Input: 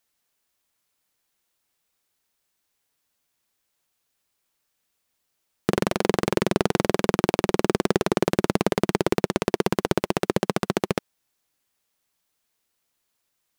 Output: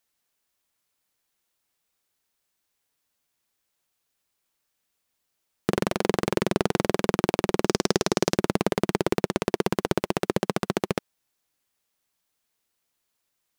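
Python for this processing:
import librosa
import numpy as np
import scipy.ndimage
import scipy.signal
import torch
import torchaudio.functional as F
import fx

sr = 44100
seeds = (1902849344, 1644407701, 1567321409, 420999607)

y = fx.peak_eq(x, sr, hz=5600.0, db=11.5, octaves=1.0, at=(7.65, 8.37))
y = y * librosa.db_to_amplitude(-2.0)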